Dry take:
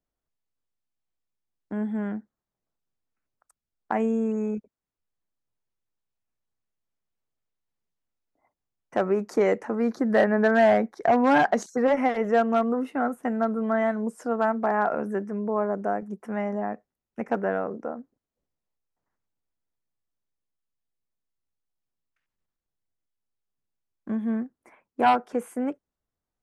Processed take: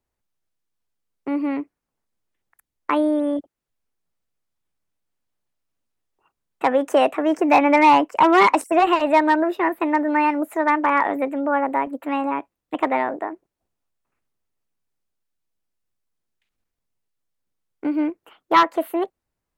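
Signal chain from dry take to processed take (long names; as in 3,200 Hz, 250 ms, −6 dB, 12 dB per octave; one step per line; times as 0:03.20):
wrong playback speed 33 rpm record played at 45 rpm
level +5.5 dB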